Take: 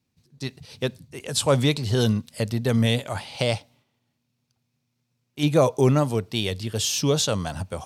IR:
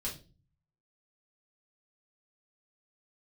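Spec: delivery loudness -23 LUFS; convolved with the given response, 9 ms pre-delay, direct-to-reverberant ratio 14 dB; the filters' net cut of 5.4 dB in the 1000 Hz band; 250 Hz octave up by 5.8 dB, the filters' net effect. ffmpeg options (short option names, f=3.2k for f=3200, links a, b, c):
-filter_complex "[0:a]equalizer=f=250:t=o:g=7.5,equalizer=f=1k:t=o:g=-8,asplit=2[a][b];[1:a]atrim=start_sample=2205,adelay=9[c];[b][c]afir=irnorm=-1:irlink=0,volume=-15dB[d];[a][d]amix=inputs=2:normalize=0,volume=-2.5dB"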